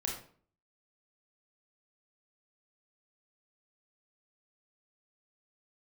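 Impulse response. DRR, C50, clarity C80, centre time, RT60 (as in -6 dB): -1.0 dB, 4.5 dB, 9.0 dB, 35 ms, 0.50 s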